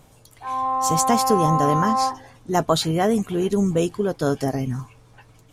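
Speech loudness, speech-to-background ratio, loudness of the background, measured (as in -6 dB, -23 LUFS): -22.5 LUFS, 0.0 dB, -22.5 LUFS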